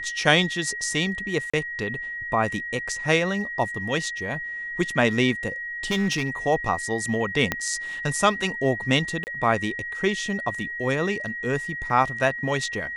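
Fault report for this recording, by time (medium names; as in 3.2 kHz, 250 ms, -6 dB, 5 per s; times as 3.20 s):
whine 1.9 kHz -30 dBFS
1.50–1.53 s: dropout 35 ms
5.90–6.29 s: clipped -18.5 dBFS
7.52 s: pop -8 dBFS
9.24–9.27 s: dropout 29 ms
11.90 s: dropout 2.3 ms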